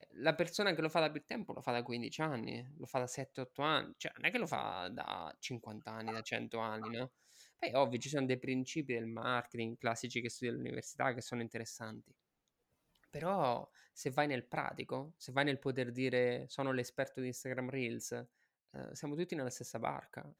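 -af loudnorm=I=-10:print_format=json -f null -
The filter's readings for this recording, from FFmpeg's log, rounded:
"input_i" : "-39.1",
"input_tp" : "-17.2",
"input_lra" : "5.1",
"input_thresh" : "-49.4",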